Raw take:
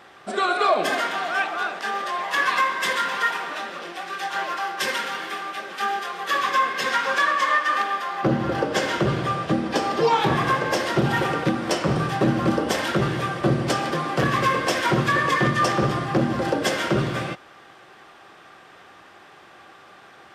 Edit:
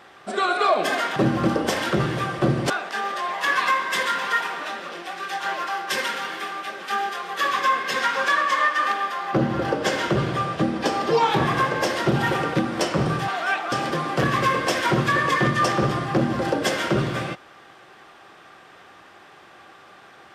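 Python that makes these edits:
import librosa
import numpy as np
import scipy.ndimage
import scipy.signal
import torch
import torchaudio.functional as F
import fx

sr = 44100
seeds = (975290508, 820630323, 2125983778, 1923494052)

y = fx.edit(x, sr, fx.swap(start_s=1.16, length_s=0.44, other_s=12.18, other_length_s=1.54), tone=tone)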